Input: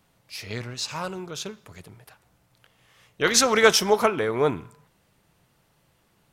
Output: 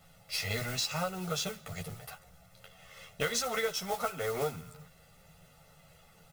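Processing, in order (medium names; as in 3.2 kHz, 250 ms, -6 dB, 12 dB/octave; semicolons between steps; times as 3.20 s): peaking EQ 83 Hz -14.5 dB 0.35 oct; comb 1.5 ms, depth 81%; modulation noise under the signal 12 dB; chorus voices 6, 0.7 Hz, delay 12 ms, depth 1.4 ms; compression 12:1, threshold -35 dBFS, peak gain reduction 25.5 dB; trim +5.5 dB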